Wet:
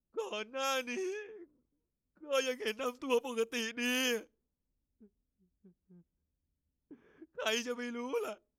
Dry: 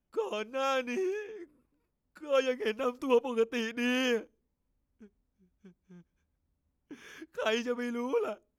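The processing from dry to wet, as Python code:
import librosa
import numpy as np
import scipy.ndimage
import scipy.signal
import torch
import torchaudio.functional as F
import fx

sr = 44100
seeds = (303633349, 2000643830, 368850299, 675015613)

y = fx.env_lowpass(x, sr, base_hz=470.0, full_db=-26.5)
y = librosa.effects.preemphasis(y, coef=0.8, zi=[0.0])
y = y * 10.0 ** (8.0 / 20.0)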